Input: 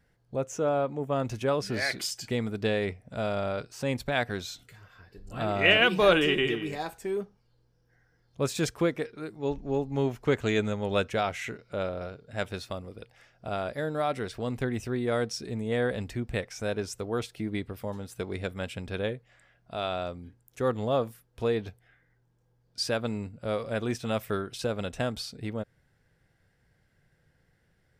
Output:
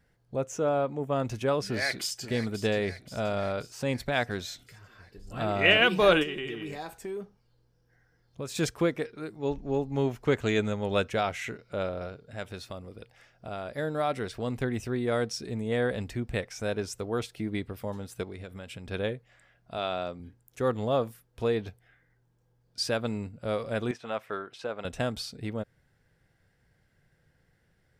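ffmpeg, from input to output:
-filter_complex "[0:a]asplit=2[a][b];[b]afade=t=in:st=1.68:d=0.01,afade=t=out:st=2.28:d=0.01,aecho=0:1:530|1060|1590|2120|2650|3180|3710:0.237137|0.142282|0.0853695|0.0512217|0.030733|0.0184398|0.0110639[c];[a][c]amix=inputs=2:normalize=0,asplit=3[d][e][f];[d]afade=t=out:st=6.22:d=0.02[g];[e]acompressor=threshold=-34dB:ratio=3:attack=3.2:release=140:knee=1:detection=peak,afade=t=in:st=6.22:d=0.02,afade=t=out:st=8.54:d=0.02[h];[f]afade=t=in:st=8.54:d=0.02[i];[g][h][i]amix=inputs=3:normalize=0,asettb=1/sr,asplit=3[j][k][l];[j]atrim=end=12.294[m];[k]atrim=start=12.29:end=13.75,asetpts=PTS-STARTPTS,afade=t=in:d=0.004:c=qsin,afade=t=out:st=1.456:d=0.004:c=qsin,acompressor=threshold=-41dB:ratio=1.5:attack=3.2:release=140:knee=1:detection=peak[n];[l]atrim=start=13.746[o];[m][n]acrossfade=d=0.004:c1=hsin:c2=qsin[p];[p][o]acrossfade=d=0.004:c1=qsin:c2=hsin,asettb=1/sr,asplit=3[q][r][s];[q]atrim=end=18.234[t];[r]atrim=start=18.23:end=18.91,asetpts=PTS-STARTPTS,afade=t=in:d=0.004:c=qsin,afade=t=out:st=0.676:d=0.004:c=qsin,acompressor=threshold=-37dB:ratio=6:attack=3.2:release=140:knee=1:detection=peak[u];[s]atrim=start=18.906[v];[t][u]acrossfade=d=0.004:c1=hsin:c2=qsin[w];[w][v]acrossfade=d=0.004:c1=qsin:c2=hsin,asettb=1/sr,asplit=3[x][y][z];[x]atrim=end=19.784[aa];[y]atrim=start=19.78:end=20.2,asetpts=PTS-STARTPTS,afade=t=in:d=0.004:c=qsin,afade=t=out:st=0.416:d=0.004:c=qsin,highpass=120,lowpass=7.7k[ab];[z]atrim=start=20.196[ac];[aa][ab]acrossfade=d=0.004:c1=hsin:c2=qsin[ad];[ad][ac]acrossfade=d=0.004:c1=qsin:c2=hsin,asettb=1/sr,asplit=3[ae][af][ag];[ae]atrim=end=23.914[ah];[af]atrim=start=23.91:end=24.85,asetpts=PTS-STARTPTS,afade=t=in:d=0.004:c=qsin,afade=t=out:st=0.936:d=0.004:c=qsin,bandpass=f=1.1k:t=q:w=0.67[ai];[ag]atrim=start=24.846[aj];[ah][ai]acrossfade=d=0.004:c1=hsin:c2=qsin[ak];[ak][aj]acrossfade=d=0.004:c1=qsin:c2=hsin"

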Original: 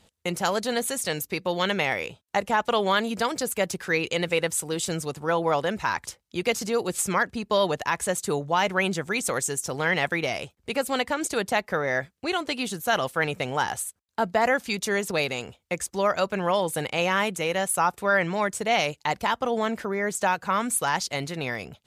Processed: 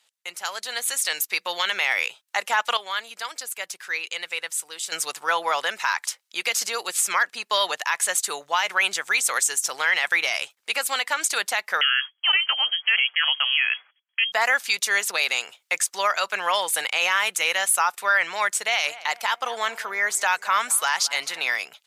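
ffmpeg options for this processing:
-filter_complex "[0:a]asettb=1/sr,asplit=3[a][b][c];[a]atrim=end=11.814[d];[b]atrim=start=11.81:end=14.32,asetpts=PTS-STARTPTS,afade=t=in:d=0.004:c=qsin,afade=t=out:st=2.506:d=0.004:c=qsin,lowpass=f=2.9k:t=q:w=0.5098,lowpass=f=2.9k:t=q:w=0.6013,lowpass=f=2.9k:t=q:w=0.9,lowpass=f=2.9k:t=q:w=2.563,afreqshift=-3400[e];[c]atrim=start=14.316[f];[d][e]acrossfade=d=0.004:c1=hsin:c2=qsin[g];[g][f]acrossfade=d=0.004:c1=qsin:c2=hsin,asplit=3[h][i][j];[h]afade=t=out:st=18.77:d=0.02[k];[i]asplit=2[l][m];[m]adelay=218,lowpass=f=1.3k:p=1,volume=-17.5dB,asplit=2[n][o];[o]adelay=218,lowpass=f=1.3k:p=1,volume=0.53,asplit=2[p][q];[q]adelay=218,lowpass=f=1.3k:p=1,volume=0.53,asplit=2[r][s];[s]adelay=218,lowpass=f=1.3k:p=1,volume=0.53,asplit=2[t][u];[u]adelay=218,lowpass=f=1.3k:p=1,volume=0.53[v];[l][n][p][r][t][v]amix=inputs=6:normalize=0,afade=t=in:st=18.77:d=0.02,afade=t=out:st=21.52:d=0.02[w];[j]afade=t=in:st=21.52:d=0.02[x];[k][w][x]amix=inputs=3:normalize=0,asplit=3[y][z][aa];[y]atrim=end=2.772[ab];[z]atrim=start=2.768:end=4.922,asetpts=PTS-STARTPTS,volume=-11.5dB[ac];[aa]atrim=start=4.918[ad];[ab][ac]acrossfade=d=0.004:c1=hsin:c2=hsin[ae];[ae][ad]acrossfade=d=0.004:c1=hsin:c2=hsin,highpass=1.3k,dynaudnorm=f=130:g=13:m=13dB,alimiter=limit=-9dB:level=0:latency=1:release=54,volume=-1.5dB"

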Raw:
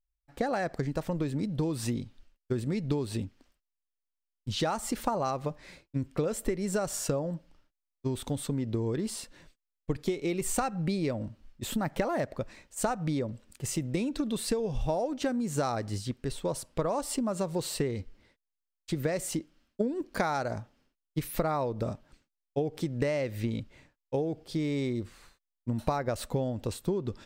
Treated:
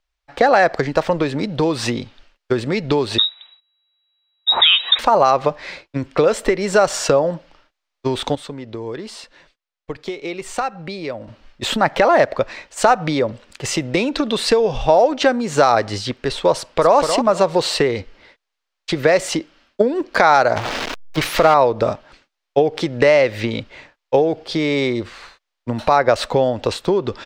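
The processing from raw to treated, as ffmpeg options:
-filter_complex "[0:a]asettb=1/sr,asplit=3[a][b][c];[a]atrim=end=3.184[d];[b]atrim=start=3.18:end=4.99,asetpts=PTS-STARTPTS,afade=t=in:d=0.004:c=qsin,afade=t=out:st=1.806:d=0.004:c=qsin,lowpass=f=3.3k:t=q:w=0.5098,lowpass=f=3.3k:t=q:w=0.6013,lowpass=f=3.3k:t=q:w=0.9,lowpass=f=3.3k:t=q:w=2.563,afreqshift=-3900[e];[c]atrim=start=4.986[f];[d][e]acrossfade=d=0.004:c1=hsin:c2=qsin[g];[g][f]acrossfade=d=0.004:c1=qsin:c2=hsin,asplit=2[h][i];[i]afade=t=in:st=16.57:d=0.01,afade=t=out:st=16.97:d=0.01,aecho=0:1:240|480|720:0.421697|0.105424|0.026356[j];[h][j]amix=inputs=2:normalize=0,asettb=1/sr,asplit=3[k][l][m];[k]atrim=end=20.564[n];[l]atrim=start=20.56:end=21.54,asetpts=PTS-STARTPTS,afade=t=in:d=0.004:c=qsin,afade=t=out:st=0.976:d=0.004:c=qsin,aeval=exprs='val(0)+0.5*0.0224*sgn(val(0))':c=same[o];[m]atrim=start=21.536[p];[n][o]acrossfade=d=0.004:c1=hsin:c2=qsin[q];[q][p]acrossfade=d=0.004:c1=qsin:c2=hsin,asplit=3[r][s][t];[r]atrim=end=8.352[u];[s]atrim=start=8.348:end=11.282,asetpts=PTS-STARTPTS,volume=-10dB[v];[t]atrim=start=11.278[w];[u][v]acrossfade=d=0.004:c1=hsin:c2=hsin[x];[x][w]acrossfade=d=0.004:c1=hsin:c2=hsin,acrossover=split=430 5600:gain=0.2 1 0.0891[y][z][aa];[y][z][aa]amix=inputs=3:normalize=0,alimiter=level_in=20.5dB:limit=-1dB:release=50:level=0:latency=1,volume=-1dB"

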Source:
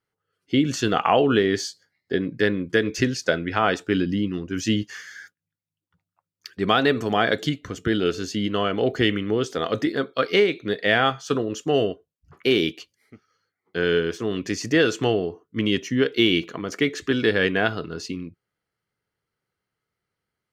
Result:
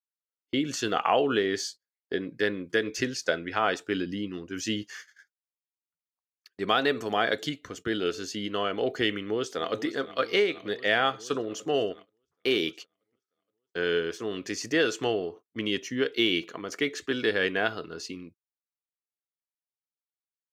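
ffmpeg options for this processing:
-filter_complex "[0:a]asplit=2[a][b];[b]afade=t=in:st=9.12:d=0.01,afade=t=out:st=9.82:d=0.01,aecho=0:1:470|940|1410|1880|2350|2820|3290|3760|4230|4700|5170|5640:0.177828|0.142262|0.11381|0.0910479|0.0728383|0.0582707|0.0466165|0.0372932|0.0298346|0.0238677|0.0190941|0.0152753[c];[a][c]amix=inputs=2:normalize=0,agate=range=-25dB:threshold=-38dB:ratio=16:detection=peak,bass=f=250:g=-9,treble=f=4k:g=2,volume=-4.5dB"

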